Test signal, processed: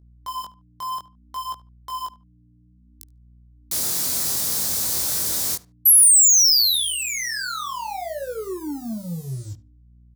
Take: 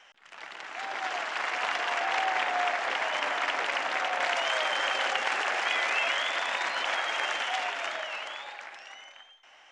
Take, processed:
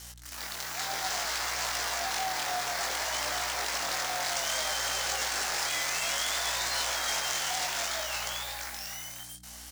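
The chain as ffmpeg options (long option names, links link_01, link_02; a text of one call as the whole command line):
ffmpeg -i in.wav -filter_complex "[0:a]highpass=100,alimiter=limit=-23.5dB:level=0:latency=1:release=72,asoftclip=type=tanh:threshold=-29.5dB,acrusher=bits=8:mix=0:aa=0.5,asplit=2[link_01][link_02];[link_02]adelay=73,lowpass=frequency=2400:poles=1,volume=-17.5dB,asplit=2[link_03][link_04];[link_04]adelay=73,lowpass=frequency=2400:poles=1,volume=0.23[link_05];[link_03][link_05]amix=inputs=2:normalize=0[link_06];[link_01][link_06]amix=inputs=2:normalize=0,aeval=exprs='val(0)+0.00224*(sin(2*PI*60*n/s)+sin(2*PI*2*60*n/s)/2+sin(2*PI*3*60*n/s)/3+sin(2*PI*4*60*n/s)/4+sin(2*PI*5*60*n/s)/5)':channel_layout=same,flanger=delay=18:depth=5.5:speed=0.6,aexciter=amount=6.8:drive=4:freq=4000,volume=4.5dB" out.wav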